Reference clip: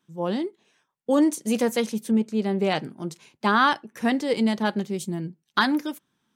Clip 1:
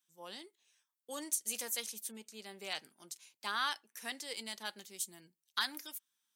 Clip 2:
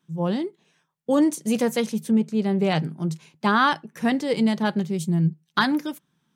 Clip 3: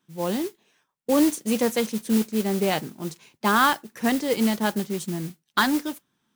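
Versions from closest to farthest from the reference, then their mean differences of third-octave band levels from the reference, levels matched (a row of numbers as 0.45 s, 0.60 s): 2, 3, 1; 1.5 dB, 6.0 dB, 9.5 dB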